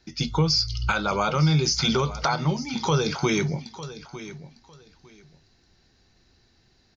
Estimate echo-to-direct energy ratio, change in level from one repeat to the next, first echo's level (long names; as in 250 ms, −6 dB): −15.0 dB, −14.0 dB, −15.0 dB